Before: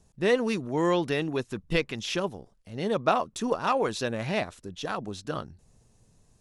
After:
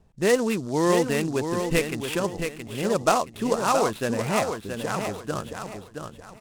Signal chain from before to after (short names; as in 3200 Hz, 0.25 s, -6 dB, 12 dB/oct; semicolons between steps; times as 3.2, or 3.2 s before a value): LPF 3200 Hz 24 dB/oct; feedback echo 0.672 s, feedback 32%, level -6.5 dB; noise-modulated delay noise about 5700 Hz, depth 0.037 ms; gain +3 dB